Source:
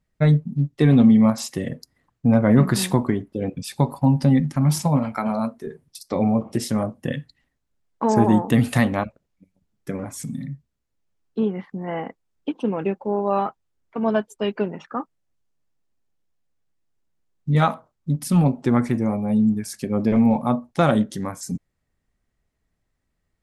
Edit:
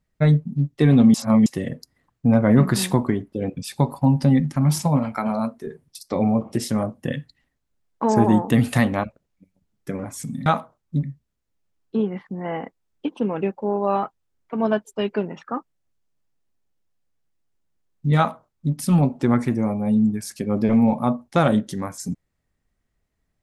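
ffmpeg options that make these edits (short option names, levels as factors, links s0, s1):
-filter_complex "[0:a]asplit=5[s0][s1][s2][s3][s4];[s0]atrim=end=1.142[s5];[s1]atrim=start=1.138:end=1.462,asetpts=PTS-STARTPTS,areverse[s6];[s2]atrim=start=1.458:end=10.462[s7];[s3]atrim=start=17.598:end=18.172[s8];[s4]atrim=start=10.458[s9];[s5][s6]acrossfade=d=0.004:c1=hsin:c2=hsin[s10];[s10][s7]acrossfade=d=0.004:c1=hsin:c2=hsin[s11];[s11][s8]acrossfade=d=0.004:c1=hsin:c2=hsin[s12];[s12][s9]acrossfade=d=0.004:c1=hsin:c2=hsin"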